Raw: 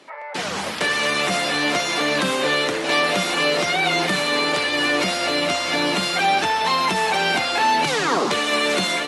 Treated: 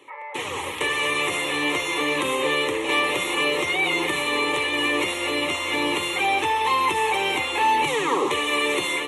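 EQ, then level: bass shelf 180 Hz +5 dB; treble shelf 11 kHz +5.5 dB; static phaser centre 1 kHz, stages 8; 0.0 dB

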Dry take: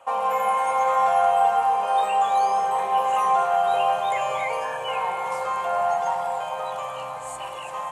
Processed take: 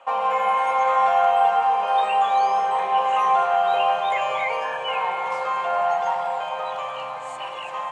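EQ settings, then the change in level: band-pass 160–3100 Hz; treble shelf 2.3 kHz +10.5 dB; 0.0 dB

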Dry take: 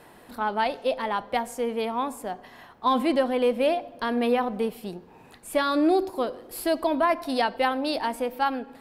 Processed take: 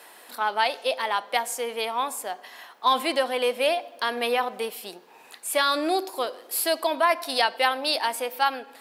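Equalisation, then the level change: high-pass 470 Hz 12 dB/octave; treble shelf 2 kHz +10.5 dB; 0.0 dB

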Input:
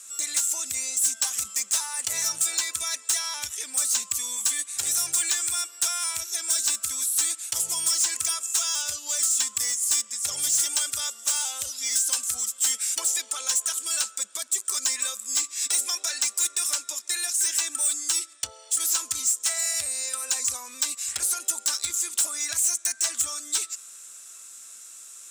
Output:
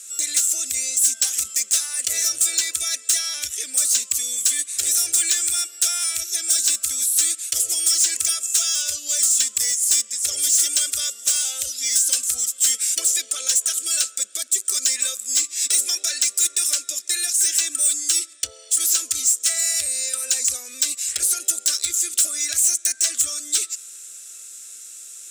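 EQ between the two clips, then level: static phaser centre 390 Hz, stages 4; +5.5 dB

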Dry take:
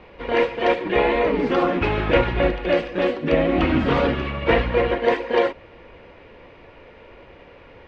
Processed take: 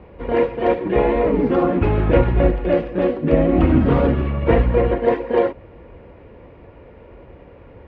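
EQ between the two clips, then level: high-pass 48 Hz; tilt EQ -2.5 dB/octave; treble shelf 2.2 kHz -8 dB; 0.0 dB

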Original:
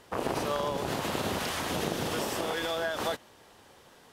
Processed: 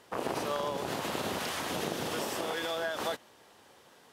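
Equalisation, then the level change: high-pass 160 Hz 6 dB/octave; -2.0 dB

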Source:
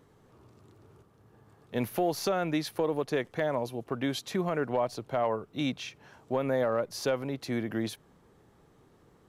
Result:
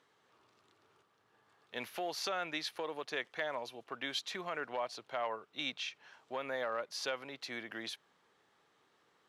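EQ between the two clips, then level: band-pass filter 2.7 kHz, Q 1.1; peaking EQ 2.4 kHz -4 dB 1 oct; +4.0 dB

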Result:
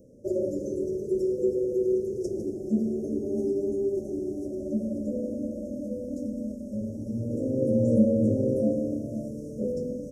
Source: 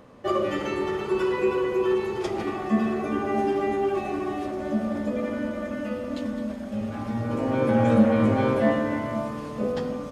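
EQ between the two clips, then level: Chebyshev band-stop 570–5600 Hz, order 5; -1.5 dB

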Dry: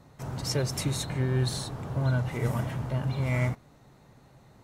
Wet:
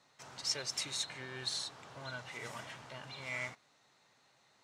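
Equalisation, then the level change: distance through air 130 m; differentiator; +8.5 dB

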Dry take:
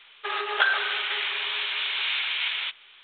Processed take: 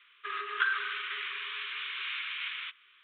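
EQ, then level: Chebyshev band-stop 400–1100 Hz, order 3; distance through air 68 m; three-band isolator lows -16 dB, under 450 Hz, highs -13 dB, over 2.9 kHz; -4.0 dB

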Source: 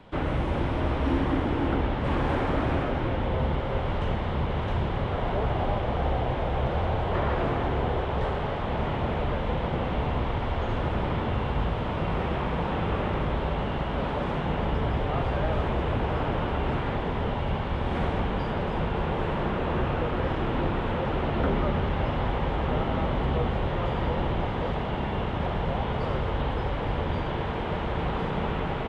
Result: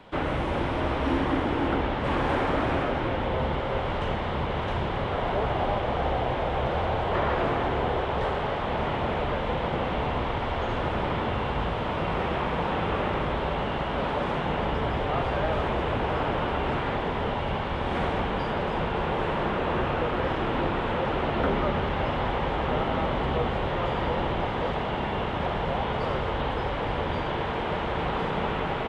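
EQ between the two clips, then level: bass shelf 250 Hz -8 dB; +3.5 dB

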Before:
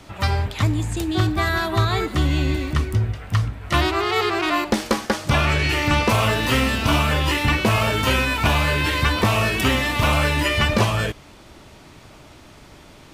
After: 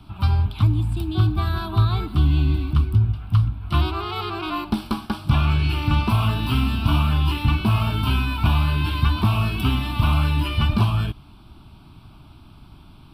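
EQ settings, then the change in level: bass shelf 420 Hz +9.5 dB; static phaser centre 1.9 kHz, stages 6; -5.5 dB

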